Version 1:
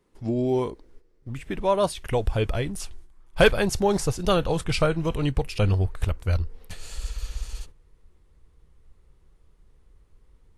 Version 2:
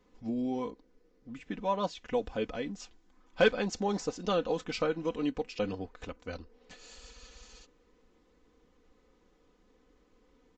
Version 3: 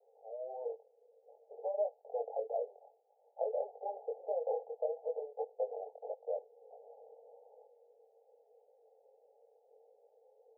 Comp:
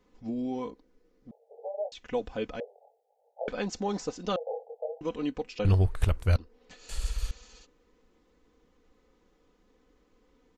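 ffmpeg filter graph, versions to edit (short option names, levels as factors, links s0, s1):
-filter_complex "[2:a]asplit=3[s0][s1][s2];[0:a]asplit=2[s3][s4];[1:a]asplit=6[s5][s6][s7][s8][s9][s10];[s5]atrim=end=1.312[s11];[s0]atrim=start=1.308:end=1.922[s12];[s6]atrim=start=1.918:end=2.602[s13];[s1]atrim=start=2.598:end=3.482[s14];[s7]atrim=start=3.478:end=4.362[s15];[s2]atrim=start=4.358:end=5.012[s16];[s8]atrim=start=5.008:end=5.652[s17];[s3]atrim=start=5.648:end=6.362[s18];[s9]atrim=start=6.358:end=6.892[s19];[s4]atrim=start=6.888:end=7.312[s20];[s10]atrim=start=7.308[s21];[s11][s12]acrossfade=d=0.004:c1=hsin:c2=hsin[s22];[s22][s13]acrossfade=d=0.004:c1=hsin:c2=hsin[s23];[s23][s14]acrossfade=d=0.004:c1=hsin:c2=hsin[s24];[s24][s15]acrossfade=d=0.004:c1=hsin:c2=hsin[s25];[s25][s16]acrossfade=d=0.004:c1=hsin:c2=hsin[s26];[s26][s17]acrossfade=d=0.004:c1=hsin:c2=hsin[s27];[s27][s18]acrossfade=d=0.004:c1=hsin:c2=hsin[s28];[s28][s19]acrossfade=d=0.004:c1=hsin:c2=hsin[s29];[s29][s20]acrossfade=d=0.004:c1=hsin:c2=hsin[s30];[s30][s21]acrossfade=d=0.004:c1=hsin:c2=hsin"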